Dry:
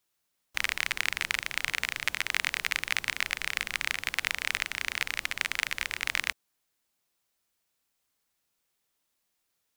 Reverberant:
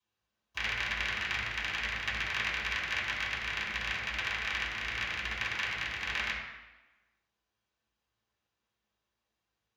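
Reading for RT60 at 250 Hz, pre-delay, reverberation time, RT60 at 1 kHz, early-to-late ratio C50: 1.1 s, 3 ms, 1.1 s, 1.1 s, 2.5 dB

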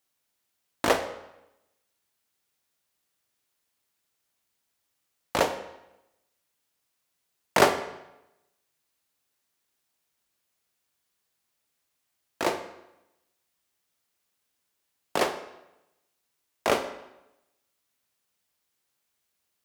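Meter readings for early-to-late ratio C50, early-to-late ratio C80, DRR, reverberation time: 10.5 dB, 12.5 dB, 8.0 dB, 0.90 s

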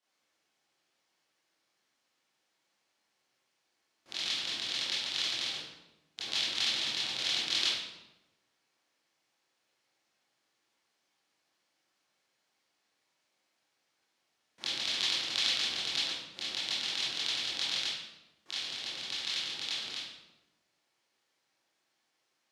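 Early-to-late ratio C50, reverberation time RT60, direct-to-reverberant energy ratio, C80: -1.0 dB, 1.0 s, -11.0 dB, 3.0 dB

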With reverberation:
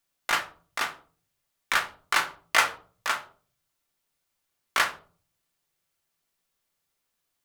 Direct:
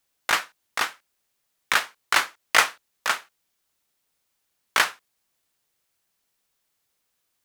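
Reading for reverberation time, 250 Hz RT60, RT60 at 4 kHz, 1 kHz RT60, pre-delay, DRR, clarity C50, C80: 0.45 s, 0.70 s, 0.30 s, 0.40 s, 3 ms, 4.0 dB, 13.5 dB, 18.5 dB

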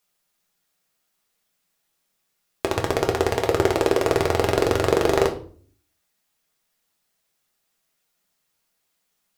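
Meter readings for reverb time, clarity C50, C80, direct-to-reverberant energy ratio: 0.45 s, 11.5 dB, 16.5 dB, 1.0 dB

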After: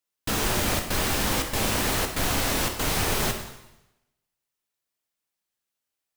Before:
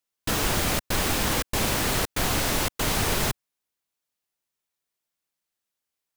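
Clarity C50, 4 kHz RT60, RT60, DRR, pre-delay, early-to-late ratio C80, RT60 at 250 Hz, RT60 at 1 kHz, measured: 7.0 dB, 0.90 s, 0.90 s, 4.0 dB, 6 ms, 9.0 dB, 0.95 s, 0.90 s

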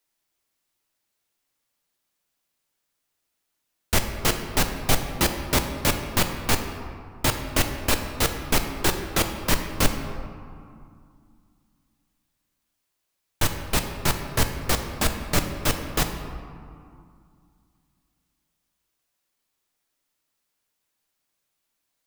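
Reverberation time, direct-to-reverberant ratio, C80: 2.3 s, 5.0 dB, 8.0 dB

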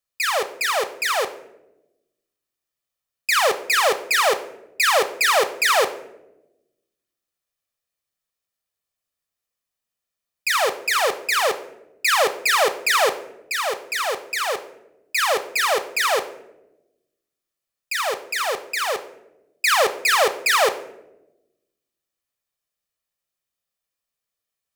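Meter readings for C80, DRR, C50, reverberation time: 16.5 dB, 10.0 dB, 14.0 dB, 0.95 s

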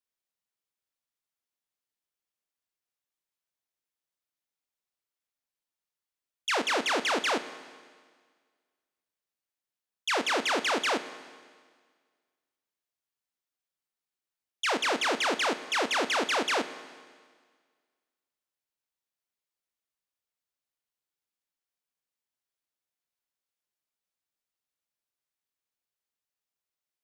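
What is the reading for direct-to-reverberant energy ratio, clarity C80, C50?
11.5 dB, 14.0 dB, 13.0 dB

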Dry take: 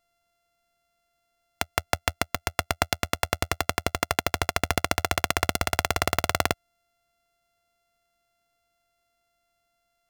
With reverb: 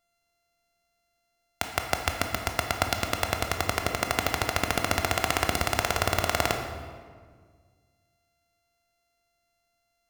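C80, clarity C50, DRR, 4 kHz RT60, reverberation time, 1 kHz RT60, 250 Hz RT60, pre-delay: 7.0 dB, 5.5 dB, 4.0 dB, 1.1 s, 1.7 s, 1.6 s, 2.2 s, 17 ms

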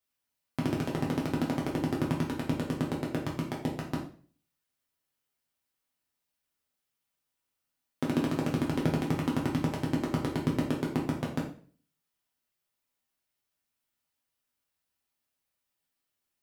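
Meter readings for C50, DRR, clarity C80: 7.0 dB, -3.5 dB, 11.0 dB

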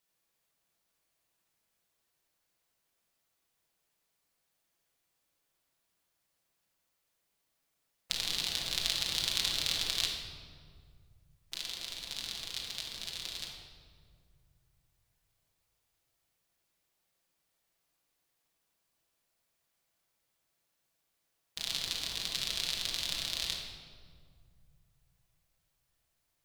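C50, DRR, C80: 2.0 dB, -2.0 dB, 4.0 dB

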